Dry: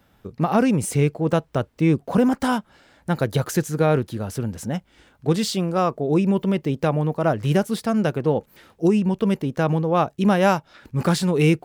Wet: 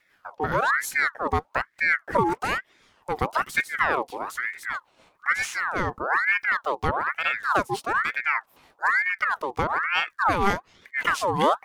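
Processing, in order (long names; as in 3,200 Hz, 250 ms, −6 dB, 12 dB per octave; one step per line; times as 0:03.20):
rotating-speaker cabinet horn 5.5 Hz
ring modulator whose carrier an LFO sweeps 1,300 Hz, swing 55%, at 1.1 Hz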